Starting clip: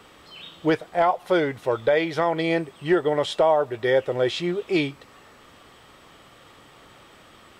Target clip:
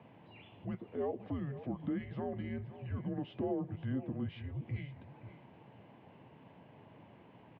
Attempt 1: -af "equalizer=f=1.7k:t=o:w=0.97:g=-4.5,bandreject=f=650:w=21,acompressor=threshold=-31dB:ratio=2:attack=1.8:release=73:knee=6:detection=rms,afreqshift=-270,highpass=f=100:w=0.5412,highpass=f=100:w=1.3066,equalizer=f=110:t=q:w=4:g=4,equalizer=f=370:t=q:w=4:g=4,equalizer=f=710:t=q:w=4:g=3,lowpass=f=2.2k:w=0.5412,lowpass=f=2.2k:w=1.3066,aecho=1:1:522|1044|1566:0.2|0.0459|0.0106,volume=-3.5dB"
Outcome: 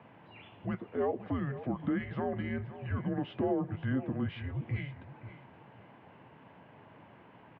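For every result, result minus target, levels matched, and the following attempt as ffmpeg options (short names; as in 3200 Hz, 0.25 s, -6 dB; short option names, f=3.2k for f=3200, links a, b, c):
2000 Hz band +5.0 dB; compressor: peak gain reduction -4 dB
-af "equalizer=f=1.7k:t=o:w=0.97:g=-14,bandreject=f=650:w=21,acompressor=threshold=-31dB:ratio=2:attack=1.8:release=73:knee=6:detection=rms,afreqshift=-270,highpass=f=100:w=0.5412,highpass=f=100:w=1.3066,equalizer=f=110:t=q:w=4:g=4,equalizer=f=370:t=q:w=4:g=4,equalizer=f=710:t=q:w=4:g=3,lowpass=f=2.2k:w=0.5412,lowpass=f=2.2k:w=1.3066,aecho=1:1:522|1044|1566:0.2|0.0459|0.0106,volume=-3.5dB"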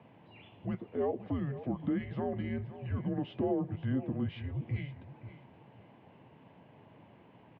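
compressor: peak gain reduction -4 dB
-af "equalizer=f=1.7k:t=o:w=0.97:g=-14,bandreject=f=650:w=21,acompressor=threshold=-39.5dB:ratio=2:attack=1.8:release=73:knee=6:detection=rms,afreqshift=-270,highpass=f=100:w=0.5412,highpass=f=100:w=1.3066,equalizer=f=110:t=q:w=4:g=4,equalizer=f=370:t=q:w=4:g=4,equalizer=f=710:t=q:w=4:g=3,lowpass=f=2.2k:w=0.5412,lowpass=f=2.2k:w=1.3066,aecho=1:1:522|1044|1566:0.2|0.0459|0.0106,volume=-3.5dB"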